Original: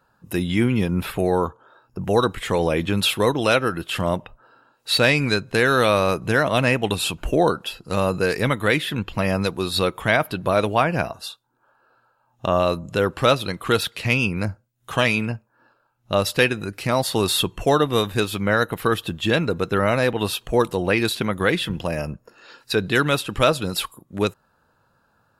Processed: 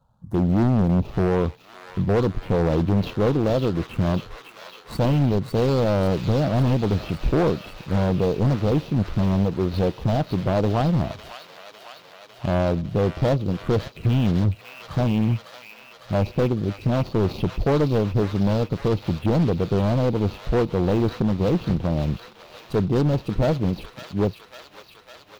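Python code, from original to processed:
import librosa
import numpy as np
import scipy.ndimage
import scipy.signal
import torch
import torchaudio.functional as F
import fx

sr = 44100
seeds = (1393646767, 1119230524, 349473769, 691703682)

y = scipy.signal.medfilt(x, 25)
y = fx.low_shelf(y, sr, hz=360.0, db=11.0)
y = fx.env_phaser(y, sr, low_hz=350.0, high_hz=1700.0, full_db=-16.0)
y = np.clip(y, -10.0 ** (-13.0 / 20.0), 10.0 ** (-13.0 / 20.0))
y = fx.echo_wet_highpass(y, sr, ms=553, feedback_pct=74, hz=1600.0, wet_db=-4)
y = fx.doppler_dist(y, sr, depth_ms=0.26)
y = y * 10.0 ** (-2.0 / 20.0)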